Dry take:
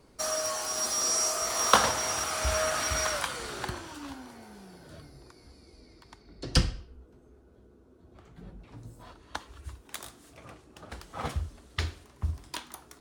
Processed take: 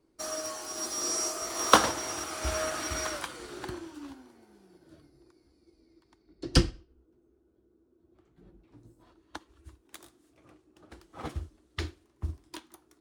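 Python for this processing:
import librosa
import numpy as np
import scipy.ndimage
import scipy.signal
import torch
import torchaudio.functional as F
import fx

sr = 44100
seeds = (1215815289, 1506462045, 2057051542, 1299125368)

y = fx.peak_eq(x, sr, hz=330.0, db=14.0, octaves=0.42)
y = fx.upward_expand(y, sr, threshold_db=-50.0, expansion=1.5)
y = y * 10.0 ** (2.0 / 20.0)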